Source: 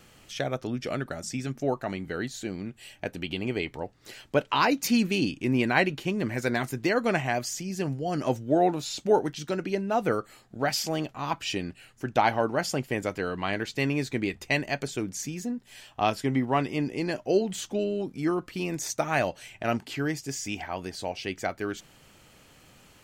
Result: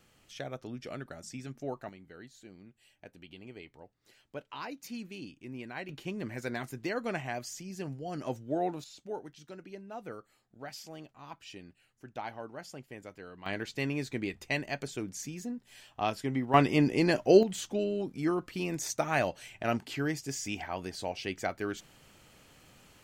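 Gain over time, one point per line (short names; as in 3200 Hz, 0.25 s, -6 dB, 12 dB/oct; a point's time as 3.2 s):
-10 dB
from 1.89 s -18 dB
from 5.89 s -9 dB
from 8.84 s -17 dB
from 13.46 s -6 dB
from 16.54 s +3.5 dB
from 17.43 s -3 dB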